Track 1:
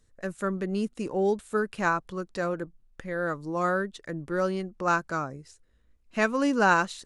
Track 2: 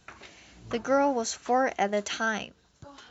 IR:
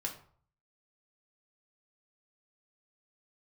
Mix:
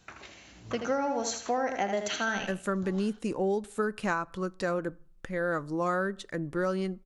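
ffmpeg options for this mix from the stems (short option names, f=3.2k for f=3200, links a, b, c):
-filter_complex "[0:a]adelay=2250,volume=0.5dB,asplit=2[a][b];[b]volume=-18dB[c];[1:a]volume=-2.5dB,asplit=3[d][e][f];[e]volume=-10.5dB[g];[f]volume=-6dB[h];[2:a]atrim=start_sample=2205[i];[c][g]amix=inputs=2:normalize=0[j];[j][i]afir=irnorm=-1:irlink=0[k];[h]aecho=0:1:80|160|240|320:1|0.31|0.0961|0.0298[l];[a][d][k][l]amix=inputs=4:normalize=0,acompressor=threshold=-25dB:ratio=6"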